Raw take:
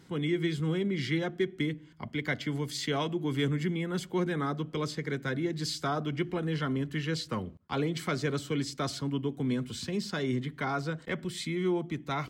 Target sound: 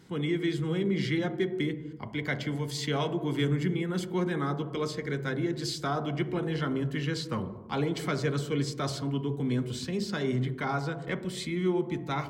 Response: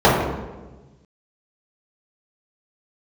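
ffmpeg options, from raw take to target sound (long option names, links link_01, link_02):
-filter_complex "[0:a]asplit=2[link_01][link_02];[1:a]atrim=start_sample=2205,afade=type=out:start_time=0.42:duration=0.01,atrim=end_sample=18963,adelay=11[link_03];[link_02][link_03]afir=irnorm=-1:irlink=0,volume=-36dB[link_04];[link_01][link_04]amix=inputs=2:normalize=0"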